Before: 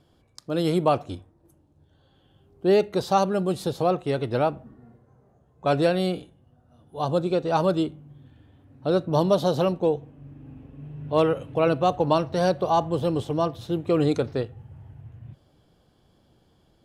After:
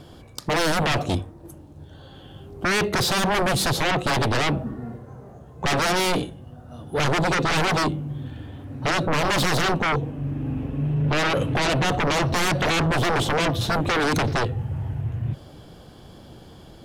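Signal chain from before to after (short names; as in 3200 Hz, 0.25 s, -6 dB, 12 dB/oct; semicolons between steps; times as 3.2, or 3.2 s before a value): dynamic EQ 880 Hz, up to -5 dB, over -33 dBFS, Q 1; limiter -18 dBFS, peak gain reduction 7.5 dB; sine folder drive 13 dB, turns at -18 dBFS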